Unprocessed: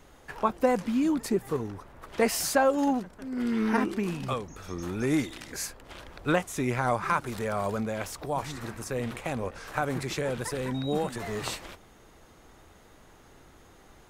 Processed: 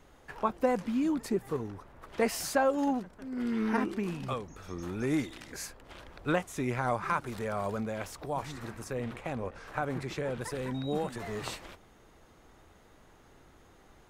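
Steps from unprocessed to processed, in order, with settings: treble shelf 4.4 kHz -4 dB, from 8.93 s -10.5 dB, from 10.41 s -4 dB; trim -3.5 dB

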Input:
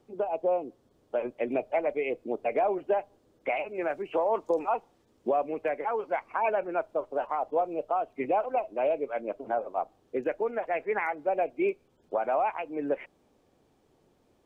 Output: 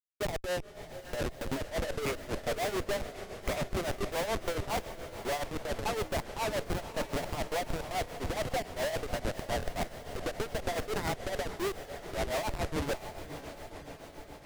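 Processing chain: block-companded coder 5-bit; steep high-pass 240 Hz 48 dB/octave; band-stop 790 Hz, Q 18; in parallel at -2 dB: compression 12:1, threshold -41 dBFS, peak gain reduction 19.5 dB; on the sum: Schmitt trigger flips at -29 dBFS; on a send: echo that smears into a reverb 565 ms, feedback 68%, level -11 dB; on the sum: granulator 216 ms, grains 7.1 per s, spray 22 ms, pitch spread up and down by 0 st

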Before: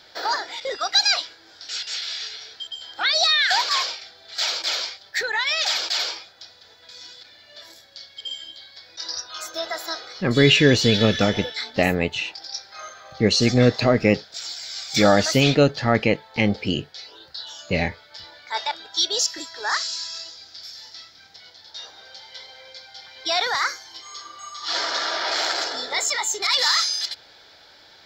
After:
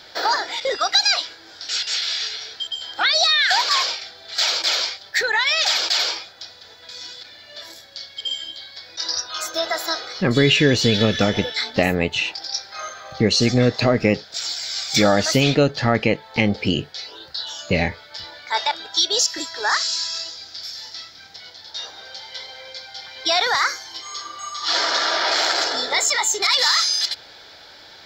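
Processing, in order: compression 2:1, threshold -23 dBFS, peak gain reduction 7.5 dB; trim +6 dB

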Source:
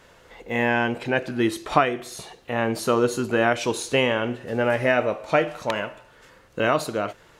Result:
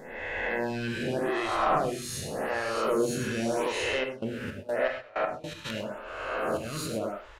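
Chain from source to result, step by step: reverse spectral sustain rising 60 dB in 1.48 s; bass shelf 110 Hz +10 dB; hum notches 60/120/180/240/300 Hz; in parallel at +2 dB: compression, threshold -28 dBFS, peak gain reduction 17.5 dB; on the sum: slow attack 217 ms; saturation -12 dBFS, distortion -13 dB; 4.03–5.64 s: trance gate "..xx...x..x..xxx" 160 bpm -24 dB; on a send: delay 101 ms -16 dB; on the sum: gated-style reverb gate 150 ms flat, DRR 4 dB; lamp-driven phase shifter 0.85 Hz; trim -8 dB

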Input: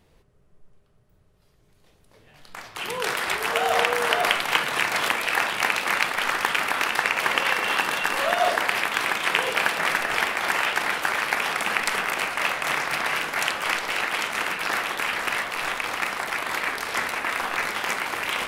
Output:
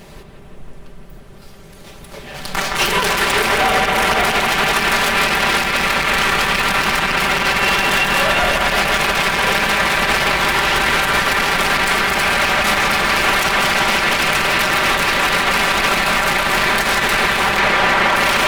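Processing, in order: comb filter that takes the minimum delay 5.1 ms; compression 6:1, threshold -33 dBFS, peak gain reduction 15.5 dB; 17.59–18.16 s: overdrive pedal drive 20 dB, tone 1.1 kHz, clips at -21.5 dBFS; bucket-brigade echo 168 ms, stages 4096, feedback 79%, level -6 dB; loudness maximiser +28 dB; trim -5 dB

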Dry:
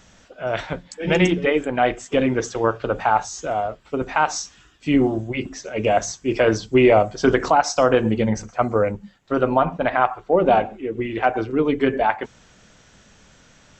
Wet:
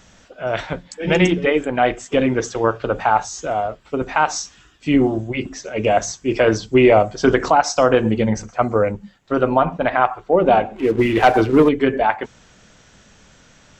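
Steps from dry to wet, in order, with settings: 10.76–11.69 s: waveshaping leveller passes 2; trim +2 dB

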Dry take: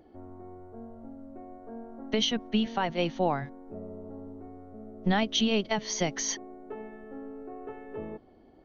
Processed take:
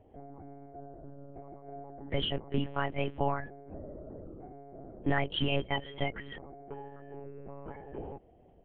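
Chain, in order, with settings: coarse spectral quantiser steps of 30 dB; elliptic low-pass 3.1 kHz, stop band 40 dB; monotone LPC vocoder at 8 kHz 140 Hz; trim -1.5 dB

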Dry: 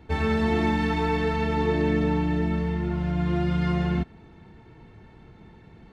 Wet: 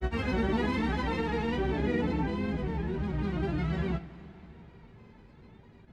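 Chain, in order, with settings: granulator, pitch spread up and down by 3 st; two-slope reverb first 0.25 s, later 3.9 s, from -19 dB, DRR 6.5 dB; trim -5 dB

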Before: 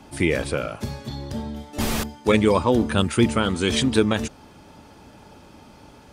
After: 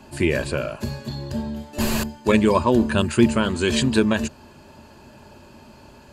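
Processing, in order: rippled EQ curve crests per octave 1.4, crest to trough 8 dB

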